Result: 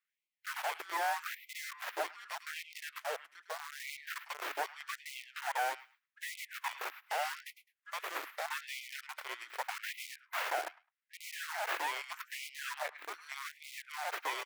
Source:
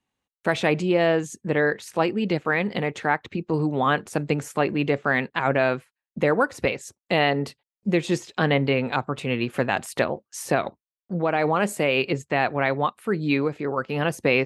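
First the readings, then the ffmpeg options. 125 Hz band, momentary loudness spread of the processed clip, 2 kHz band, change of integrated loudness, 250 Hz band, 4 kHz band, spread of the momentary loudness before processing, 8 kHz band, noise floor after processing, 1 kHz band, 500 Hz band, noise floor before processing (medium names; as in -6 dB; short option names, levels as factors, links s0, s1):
under -40 dB, 10 LU, -13.0 dB, -15.5 dB, -38.0 dB, -10.0 dB, 6 LU, -7.5 dB, under -85 dBFS, -11.5 dB, -23.0 dB, under -85 dBFS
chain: -filter_complex "[0:a]afftfilt=real='real(if(between(b,1,1008),(2*floor((b-1)/48)+1)*48-b,b),0)':imag='imag(if(between(b,1,1008),(2*floor((b-1)/48)+1)*48-b,b),0)*if(between(b,1,1008),-1,1)':win_size=2048:overlap=0.75,bandreject=f=3500:w=7.4,deesser=0.35,firequalizer=gain_entry='entry(110,0);entry(210,-1);entry(310,0);entry(460,-3);entry(720,-25);entry(1700,-17);entry(2600,-10);entry(6000,11);entry(10000,11)':delay=0.05:min_phase=1,asplit=2[s0][s1];[s1]acompressor=threshold=0.0141:ratio=8,volume=1.12[s2];[s0][s2]amix=inputs=2:normalize=0,aeval=exprs='abs(val(0))':c=same,acrossover=split=430 2200:gain=0.1 1 0.0794[s3][s4][s5];[s3][s4][s5]amix=inputs=3:normalize=0,acrossover=split=250|1400[s6][s7][s8];[s7]acrusher=bits=4:dc=4:mix=0:aa=0.000001[s9];[s8]aecho=1:1:105|210:0.355|0.0532[s10];[s6][s9][s10]amix=inputs=3:normalize=0,afftfilt=real='re*gte(b*sr/1024,280*pow(2000/280,0.5+0.5*sin(2*PI*0.82*pts/sr)))':imag='im*gte(b*sr/1024,280*pow(2000/280,0.5+0.5*sin(2*PI*0.82*pts/sr)))':win_size=1024:overlap=0.75,volume=1.26"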